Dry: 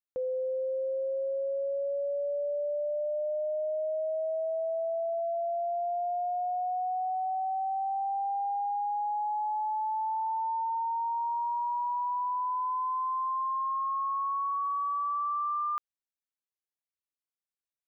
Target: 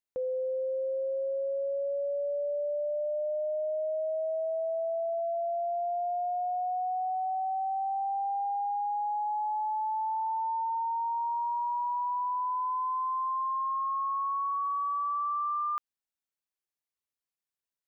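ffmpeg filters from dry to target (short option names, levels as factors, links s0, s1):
-filter_complex "[0:a]asplit=3[s0][s1][s2];[s0]afade=t=out:st=8.44:d=0.02[s3];[s1]highpass=270,afade=t=in:st=8.44:d=0.02,afade=t=out:st=9.24:d=0.02[s4];[s2]afade=t=in:st=9.24:d=0.02[s5];[s3][s4][s5]amix=inputs=3:normalize=0"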